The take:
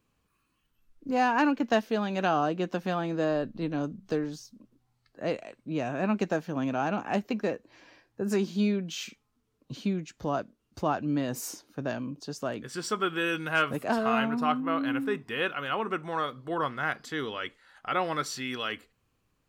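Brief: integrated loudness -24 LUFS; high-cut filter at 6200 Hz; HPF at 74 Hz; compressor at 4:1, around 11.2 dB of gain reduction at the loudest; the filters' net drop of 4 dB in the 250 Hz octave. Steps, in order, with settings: HPF 74 Hz; LPF 6200 Hz; bell 250 Hz -5 dB; compressor 4:1, threshold -35 dBFS; gain +15 dB

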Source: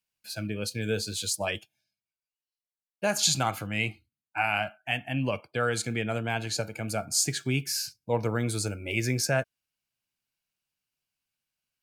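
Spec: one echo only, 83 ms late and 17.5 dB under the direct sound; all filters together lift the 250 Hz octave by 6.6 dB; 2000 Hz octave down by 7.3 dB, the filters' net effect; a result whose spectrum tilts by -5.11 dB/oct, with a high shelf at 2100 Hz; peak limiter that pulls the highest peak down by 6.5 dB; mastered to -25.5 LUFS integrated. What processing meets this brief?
bell 250 Hz +8 dB; bell 2000 Hz -6 dB; high shelf 2100 Hz -6.5 dB; limiter -19.5 dBFS; echo 83 ms -17.5 dB; gain +5.5 dB

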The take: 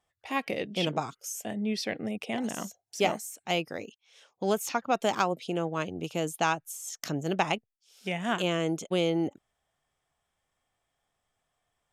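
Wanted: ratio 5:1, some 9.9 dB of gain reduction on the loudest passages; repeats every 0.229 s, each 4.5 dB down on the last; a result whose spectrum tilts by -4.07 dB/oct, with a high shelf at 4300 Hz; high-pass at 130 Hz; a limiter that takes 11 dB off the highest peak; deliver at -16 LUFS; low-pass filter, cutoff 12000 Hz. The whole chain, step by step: HPF 130 Hz; LPF 12000 Hz; high shelf 4300 Hz -4 dB; compressor 5:1, threshold -32 dBFS; limiter -28 dBFS; feedback echo 0.229 s, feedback 60%, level -4.5 dB; gain +22.5 dB

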